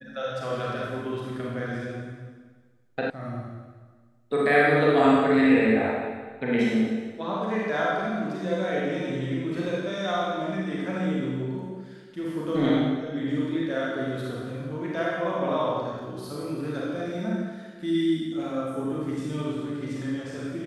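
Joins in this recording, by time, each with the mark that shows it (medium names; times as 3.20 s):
3.10 s: sound stops dead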